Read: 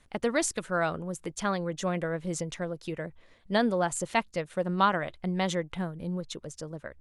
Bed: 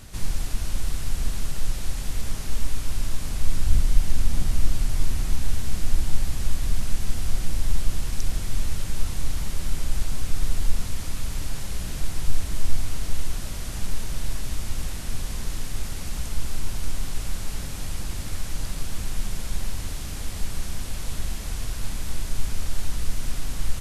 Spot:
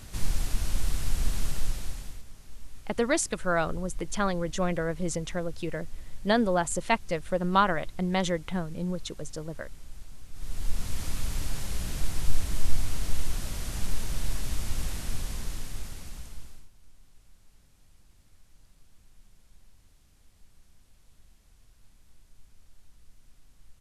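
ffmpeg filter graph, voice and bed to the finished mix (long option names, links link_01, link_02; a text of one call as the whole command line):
ffmpeg -i stem1.wav -i stem2.wav -filter_complex "[0:a]adelay=2750,volume=1.5dB[link_01];[1:a]volume=16dB,afade=type=out:start_time=1.49:duration=0.75:silence=0.125893,afade=type=in:start_time=10.32:duration=0.71:silence=0.133352,afade=type=out:start_time=14.96:duration=1.73:silence=0.0421697[link_02];[link_01][link_02]amix=inputs=2:normalize=0" out.wav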